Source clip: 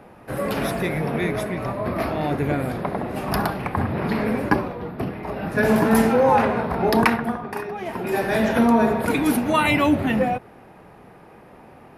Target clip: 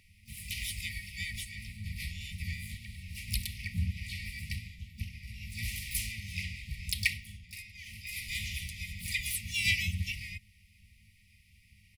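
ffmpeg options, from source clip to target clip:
ffmpeg -i in.wav -filter_complex "[0:a]afftfilt=real='re*(1-between(b*sr/4096,110,2200))':imag='im*(1-between(b*sr/4096,110,2200))':win_size=4096:overlap=0.75,asplit=4[link_01][link_02][link_03][link_04];[link_02]asetrate=37084,aresample=44100,atempo=1.18921,volume=-3dB[link_05];[link_03]asetrate=66075,aresample=44100,atempo=0.66742,volume=-17dB[link_06];[link_04]asetrate=88200,aresample=44100,atempo=0.5,volume=-8dB[link_07];[link_01][link_05][link_06][link_07]amix=inputs=4:normalize=0,volume=-4.5dB" out.wav

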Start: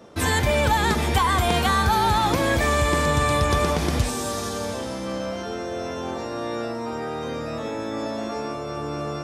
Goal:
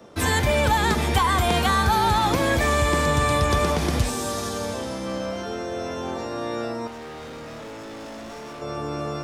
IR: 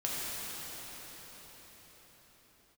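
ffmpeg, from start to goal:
-filter_complex "[0:a]acrossover=split=230|600|6400[link_01][link_02][link_03][link_04];[link_04]acrusher=bits=5:mode=log:mix=0:aa=0.000001[link_05];[link_01][link_02][link_03][link_05]amix=inputs=4:normalize=0,asettb=1/sr,asplit=3[link_06][link_07][link_08];[link_06]atrim=end=6.874[link_09];[link_07]atrim=start=6.87:end=8.62,asetpts=PTS-STARTPTS,afade=type=in:duration=0.004:curve=qsin,afade=type=out:start_time=1.746:duration=0.004:curve=qsin,volume=36dB,asoftclip=hard,volume=-36dB[link_10];[link_08]atrim=start=8.616[link_11];[link_09][link_10]acrossfade=duration=0.004:curve1=hsin:curve2=qsin[link_12];[link_12][link_11]acrossfade=duration=0.004:curve1=qsin:curve2=hsin"

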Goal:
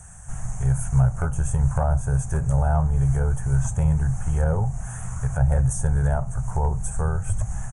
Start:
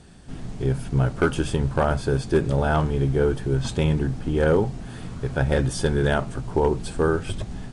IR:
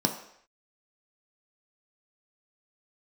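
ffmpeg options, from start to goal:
-filter_complex "[0:a]acrossover=split=710[link_01][link_02];[link_02]acompressor=threshold=-43dB:ratio=6[link_03];[link_01][link_03]amix=inputs=2:normalize=0,firequalizer=gain_entry='entry(110,0);entry(300,-30);entry(500,-14);entry(740,-2);entry(1500,-2);entry(4400,-30);entry(6300,9)':delay=0.05:min_phase=1,volume=6.5dB"

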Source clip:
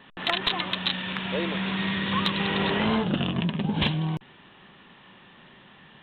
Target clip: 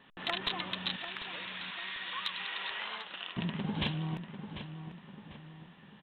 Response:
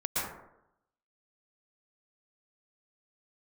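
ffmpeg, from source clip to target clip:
-filter_complex "[0:a]asettb=1/sr,asplit=3[link_01][link_02][link_03];[link_01]atrim=end=0.964[link_04];[link_02]atrim=start=0.96:end=3.37,asetpts=PTS-STARTPTS,afade=type=in:duration=0.004:curve=qsin,afade=type=out:start_time=2.406:duration=0.004:curve=qsin,highpass=1200[link_05];[link_03]atrim=start=3.366[link_06];[link_04][link_05]acrossfade=duration=0.004:curve1=hsin:curve2=qsin[link_07];[link_07][link_06]acrossfade=duration=0.004:curve1=qsin:curve2=hsin,asplit=2[link_08][link_09];[link_09]adelay=745,lowpass=frequency=2500:poles=1,volume=-9dB,asplit=2[link_10][link_11];[link_11]adelay=745,lowpass=frequency=2500:poles=1,volume=0.47,asplit=2[link_12][link_13];[link_13]adelay=745,lowpass=frequency=2500:poles=1,volume=0.47,asplit=2[link_14][link_15];[link_15]adelay=745,lowpass=frequency=2500:poles=1,volume=0.47,asplit=2[link_16][link_17];[link_17]adelay=745,lowpass=frequency=2500:poles=1,volume=0.47[link_18];[link_08][link_10][link_12][link_14][link_16][link_18]amix=inputs=6:normalize=0,volume=-8.5dB"

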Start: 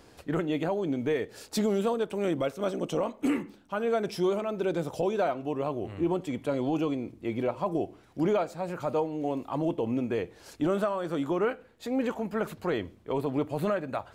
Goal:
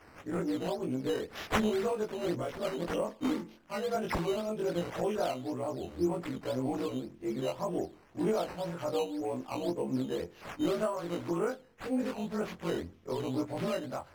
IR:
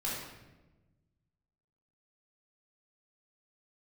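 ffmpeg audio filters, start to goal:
-af "afftfilt=real='re':imag='-im':win_size=2048:overlap=0.75,highshelf=frequency=4300:width_type=q:width=3:gain=10.5,acrusher=samples=9:mix=1:aa=0.000001:lfo=1:lforange=9:lforate=1.9,aemphasis=mode=reproduction:type=cd"

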